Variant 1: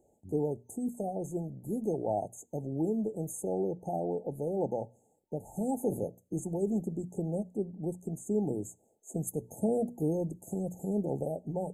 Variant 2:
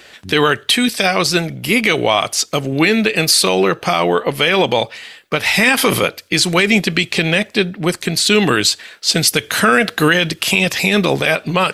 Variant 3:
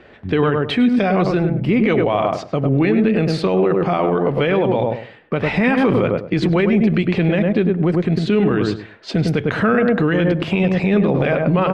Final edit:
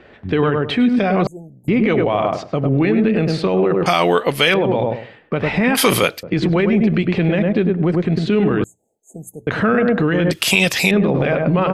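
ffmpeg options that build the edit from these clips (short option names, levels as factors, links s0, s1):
-filter_complex "[0:a]asplit=2[s0][s1];[1:a]asplit=3[s2][s3][s4];[2:a]asplit=6[s5][s6][s7][s8][s9][s10];[s5]atrim=end=1.272[s11];[s0]atrim=start=1.268:end=1.682[s12];[s6]atrim=start=1.678:end=3.862[s13];[s2]atrim=start=3.858:end=4.542[s14];[s7]atrim=start=4.538:end=5.752[s15];[s3]atrim=start=5.748:end=6.232[s16];[s8]atrim=start=6.228:end=8.642[s17];[s1]atrim=start=8.638:end=9.472[s18];[s9]atrim=start=9.468:end=10.312[s19];[s4]atrim=start=10.308:end=10.912[s20];[s10]atrim=start=10.908[s21];[s11][s12]acrossfade=d=0.004:c1=hsin:c2=hsin[s22];[s22][s13]acrossfade=d=0.004:c1=hsin:c2=hsin[s23];[s23][s14]acrossfade=d=0.004:c1=hsin:c2=hsin[s24];[s24][s15]acrossfade=d=0.004:c1=hsin:c2=hsin[s25];[s25][s16]acrossfade=d=0.004:c1=hsin:c2=hsin[s26];[s26][s17]acrossfade=d=0.004:c1=hsin:c2=hsin[s27];[s27][s18]acrossfade=d=0.004:c1=hsin:c2=hsin[s28];[s28][s19]acrossfade=d=0.004:c1=hsin:c2=hsin[s29];[s29][s20]acrossfade=d=0.004:c1=hsin:c2=hsin[s30];[s30][s21]acrossfade=d=0.004:c1=hsin:c2=hsin"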